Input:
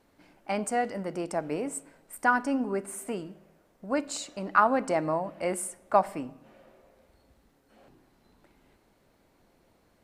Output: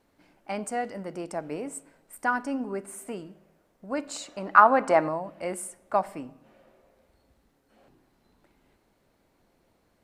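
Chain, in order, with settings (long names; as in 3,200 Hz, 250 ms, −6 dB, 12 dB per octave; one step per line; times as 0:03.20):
0:03.97–0:05.07: parametric band 1,100 Hz +2 dB → +13.5 dB 2.7 octaves
level −2.5 dB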